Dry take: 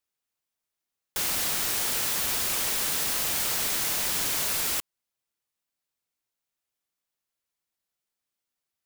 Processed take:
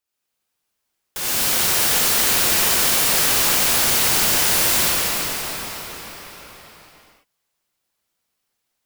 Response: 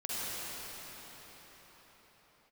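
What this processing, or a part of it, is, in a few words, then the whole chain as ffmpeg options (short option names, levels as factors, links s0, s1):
cathedral: -filter_complex "[1:a]atrim=start_sample=2205[s0];[0:a][s0]afir=irnorm=-1:irlink=0,volume=1.78"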